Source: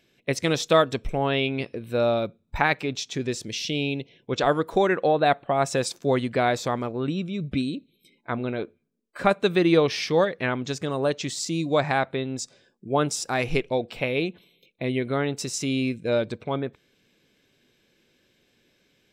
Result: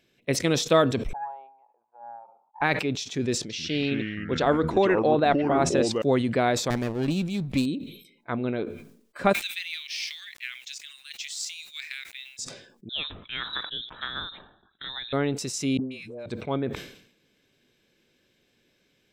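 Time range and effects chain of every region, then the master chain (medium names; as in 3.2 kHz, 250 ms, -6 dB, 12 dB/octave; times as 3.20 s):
1.13–2.62 s: Butterworth band-pass 850 Hz, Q 7 + loudspeaker Doppler distortion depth 0.83 ms
3.38–6.02 s: low-pass 6.6 kHz + peaking EQ 78 Hz -14 dB 0.62 oct + ever faster or slower copies 115 ms, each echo -5 st, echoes 2, each echo -6 dB
6.70–7.66 s: comb filter that takes the minimum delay 0.41 ms + treble shelf 3.3 kHz +9 dB
9.33–12.39 s: steep high-pass 2.1 kHz + companded quantiser 6-bit
12.89–15.13 s: frequency inversion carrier 3.9 kHz + distance through air 380 m
15.77–16.26 s: phase dispersion highs, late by 145 ms, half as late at 640 Hz + compression 4:1, threshold -34 dBFS + bass shelf 190 Hz -7.5 dB
whole clip: dynamic bell 260 Hz, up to +4 dB, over -31 dBFS, Q 0.78; decay stretcher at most 84 dB/s; trim -2.5 dB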